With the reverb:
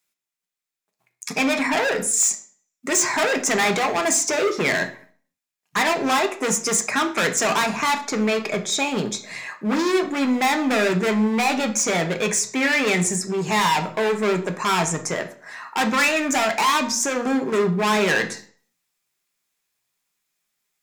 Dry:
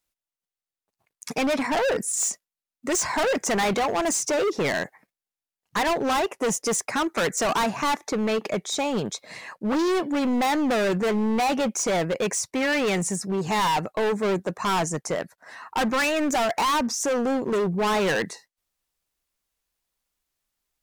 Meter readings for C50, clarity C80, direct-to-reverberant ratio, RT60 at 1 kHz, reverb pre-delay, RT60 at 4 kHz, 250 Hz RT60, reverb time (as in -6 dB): 12.5 dB, 17.5 dB, 5.5 dB, 0.50 s, 3 ms, 0.40 s, 0.45 s, 0.45 s